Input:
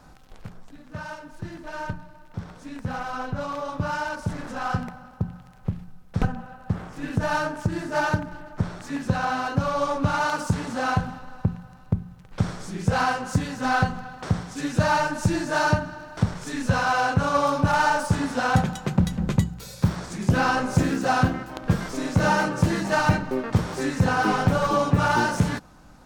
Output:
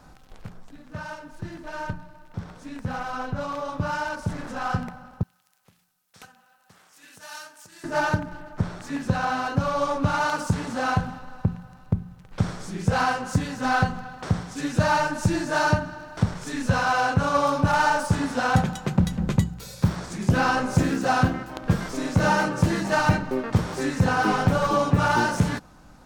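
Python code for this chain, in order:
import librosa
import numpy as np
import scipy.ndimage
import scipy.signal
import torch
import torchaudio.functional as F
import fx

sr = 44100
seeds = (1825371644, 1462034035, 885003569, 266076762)

y = fx.differentiator(x, sr, at=(5.23, 7.84))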